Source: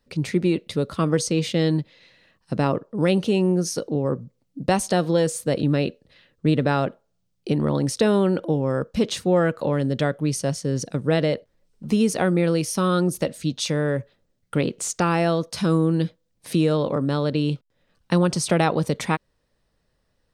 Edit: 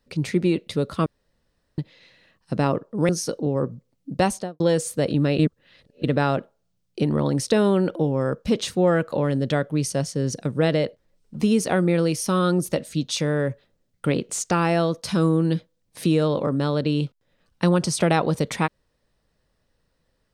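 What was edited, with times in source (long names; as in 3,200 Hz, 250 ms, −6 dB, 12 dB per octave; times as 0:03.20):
0:01.06–0:01.78: fill with room tone
0:03.09–0:03.58: remove
0:04.73–0:05.09: fade out and dull
0:05.88–0:06.53: reverse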